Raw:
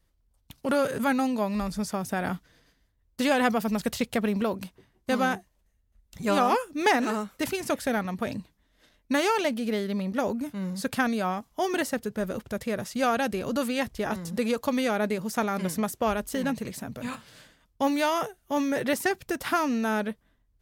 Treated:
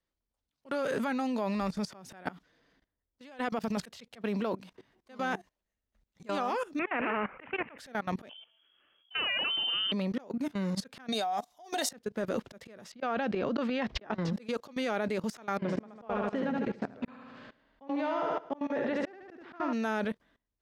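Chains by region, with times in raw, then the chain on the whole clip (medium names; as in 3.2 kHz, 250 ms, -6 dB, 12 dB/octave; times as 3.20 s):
2.28–3.77 s: compression 16:1, threshold -29 dBFS + tape noise reduction on one side only decoder only
6.79–7.78 s: steep low-pass 2.6 kHz 72 dB/octave + spectrum-flattening compressor 2:1
8.29–9.92 s: de-hum 240.2 Hz, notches 29 + frequency inversion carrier 3.3 kHz
11.12–11.91 s: tone controls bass -9 dB, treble +13 dB + small resonant body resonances 730/3700 Hz, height 18 dB, ringing for 65 ms + compression 10:1, threshold -24 dBFS
12.92–14.33 s: inverted gate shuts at -21 dBFS, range -35 dB + distance through air 220 m + level flattener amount 100%
15.57–19.73 s: tape spacing loss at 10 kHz 31 dB + feedback delay 74 ms, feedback 53%, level -4 dB
whole clip: three-band isolator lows -13 dB, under 190 Hz, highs -14 dB, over 6.4 kHz; slow attack 325 ms; level held to a coarse grid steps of 19 dB; trim +7 dB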